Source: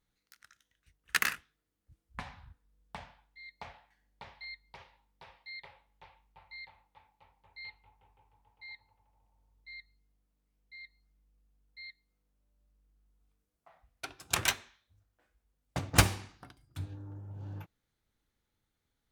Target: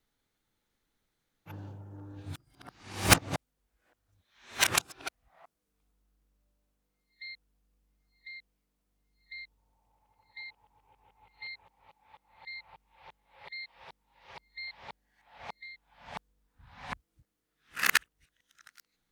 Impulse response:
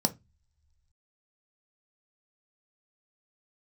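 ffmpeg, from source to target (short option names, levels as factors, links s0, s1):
-af "areverse,equalizer=f=67:t=o:w=1.7:g=-9,volume=1.5"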